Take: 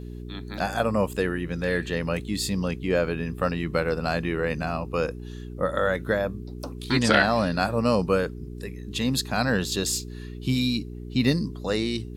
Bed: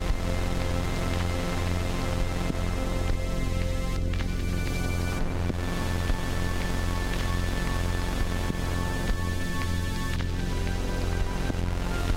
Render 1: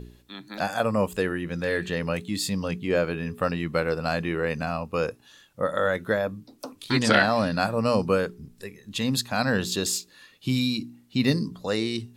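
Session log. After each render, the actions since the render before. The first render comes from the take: de-hum 60 Hz, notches 7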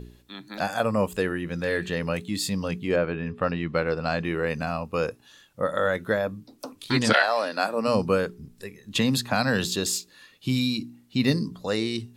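2.95–4.23 LPF 2500 Hz -> 6300 Hz; 7.12–7.87 HPF 550 Hz -> 200 Hz 24 dB/oct; 8.95–9.67 three-band squash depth 100%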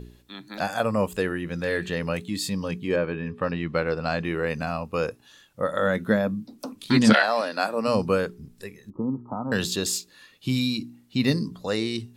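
2.3–3.53 notch comb 690 Hz; 5.82–7.41 small resonant body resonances 210 Hz, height 11 dB; 8.9–9.52 rippled Chebyshev low-pass 1300 Hz, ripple 9 dB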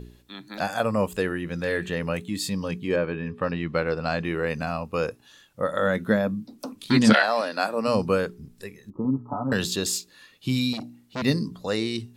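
1.72–2.4 bell 4600 Hz -5.5 dB 0.56 oct; 9.04–9.53 comb 7 ms, depth 82%; 10.73–11.22 core saturation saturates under 1900 Hz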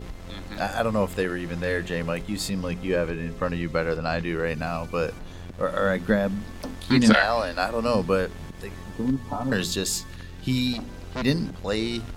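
add bed -11.5 dB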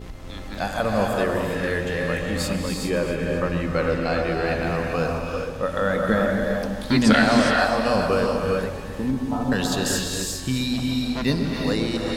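echo with dull and thin repeats by turns 0.132 s, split 1300 Hz, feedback 64%, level -7 dB; non-linear reverb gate 0.44 s rising, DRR 1 dB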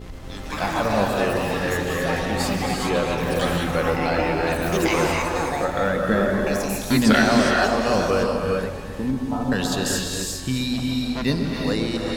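echoes that change speed 0.115 s, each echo +7 st, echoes 3, each echo -6 dB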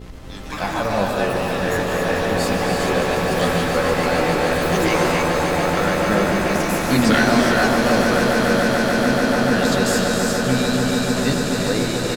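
doubler 16 ms -10.5 dB; on a send: swelling echo 0.145 s, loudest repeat 8, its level -10.5 dB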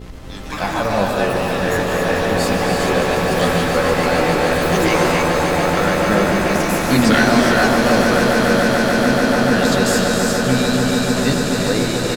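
gain +2.5 dB; limiter -2 dBFS, peak gain reduction 1 dB

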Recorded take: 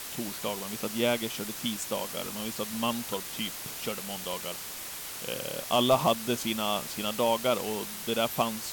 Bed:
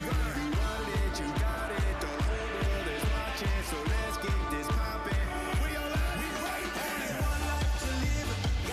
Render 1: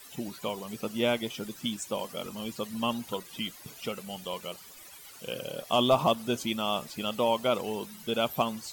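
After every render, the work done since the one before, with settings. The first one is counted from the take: denoiser 15 dB, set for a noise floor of -40 dBFS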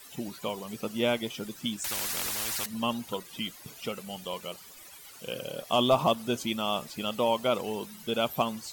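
1.84–2.66 spectral compressor 10:1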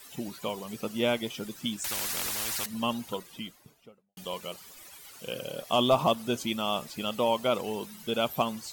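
3–4.17 studio fade out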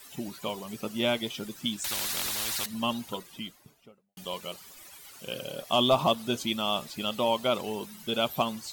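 notch 480 Hz, Q 13; dynamic EQ 3800 Hz, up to +5 dB, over -47 dBFS, Q 2.5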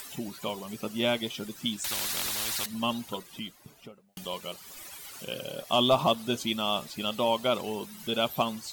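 upward compressor, threshold -37 dBFS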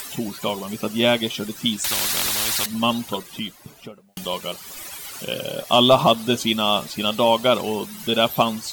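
gain +9 dB; limiter -3 dBFS, peak gain reduction 1 dB

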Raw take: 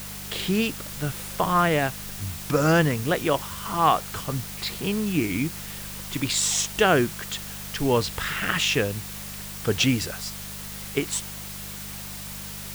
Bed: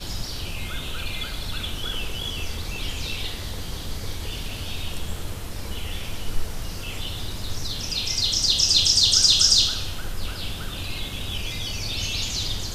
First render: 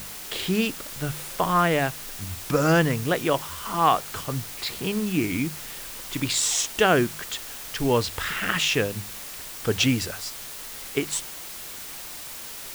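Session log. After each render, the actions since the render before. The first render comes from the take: de-hum 50 Hz, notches 4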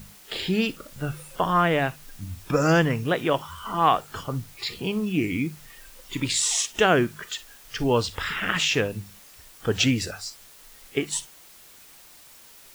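noise print and reduce 12 dB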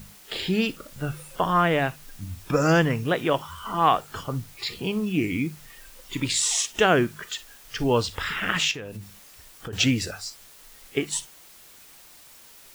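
8.71–9.73 compressor 8:1, threshold -32 dBFS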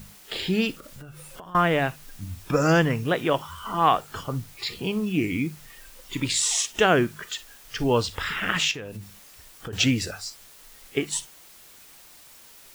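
0.75–1.55 compressor 16:1, threshold -38 dBFS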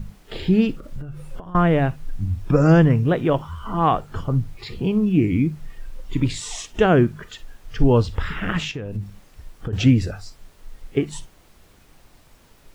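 tilt -3.5 dB/oct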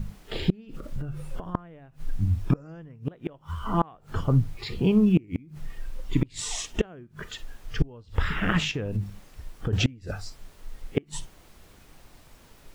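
flipped gate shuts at -10 dBFS, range -30 dB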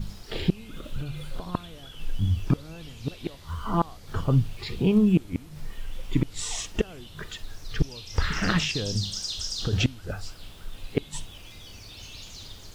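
add bed -16 dB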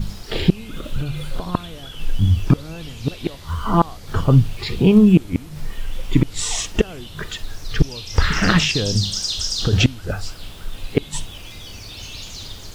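gain +8.5 dB; limiter -2 dBFS, peak gain reduction 2 dB

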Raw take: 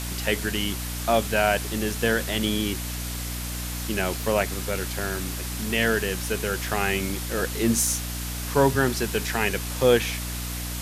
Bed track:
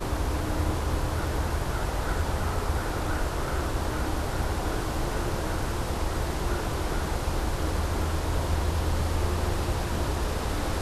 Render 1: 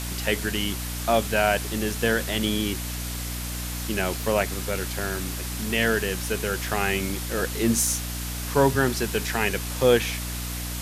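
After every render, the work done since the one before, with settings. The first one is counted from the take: nothing audible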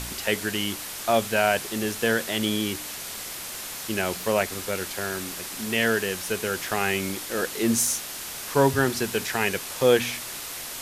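de-hum 60 Hz, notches 5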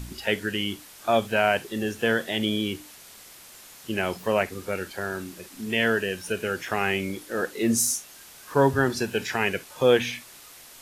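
noise print and reduce 12 dB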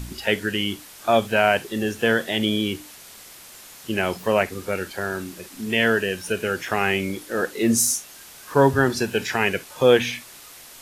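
gain +3.5 dB

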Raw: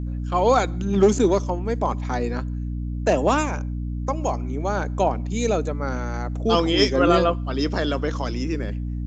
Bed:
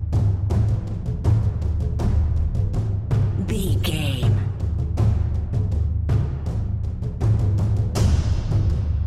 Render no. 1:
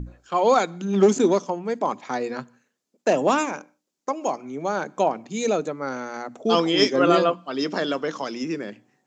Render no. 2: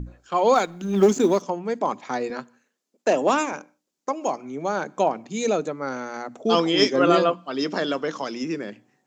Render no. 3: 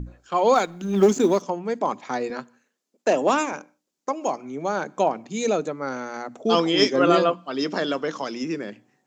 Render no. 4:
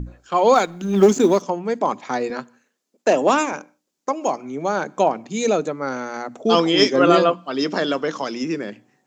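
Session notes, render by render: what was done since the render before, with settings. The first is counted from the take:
notches 60/120/180/240/300 Hz
0.55–1.42 G.711 law mismatch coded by A; 2.3–3.53 HPF 210 Hz
nothing audible
gain +3.5 dB; limiter -2 dBFS, peak gain reduction 1 dB

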